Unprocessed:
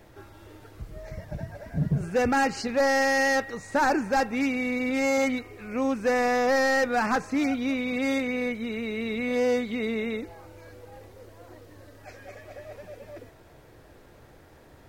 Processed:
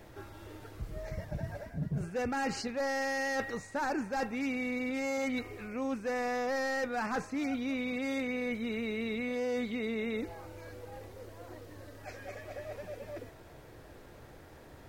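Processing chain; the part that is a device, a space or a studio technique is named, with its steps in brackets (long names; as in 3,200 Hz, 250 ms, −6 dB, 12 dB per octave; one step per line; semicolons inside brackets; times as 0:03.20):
compression on the reversed sound (reversed playback; downward compressor 5 to 1, threshold −32 dBFS, peak gain reduction 11 dB; reversed playback)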